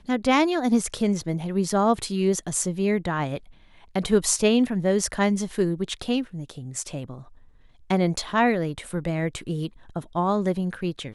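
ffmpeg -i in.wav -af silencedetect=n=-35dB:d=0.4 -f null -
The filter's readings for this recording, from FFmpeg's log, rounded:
silence_start: 3.38
silence_end: 3.95 | silence_duration: 0.58
silence_start: 7.21
silence_end: 7.90 | silence_duration: 0.70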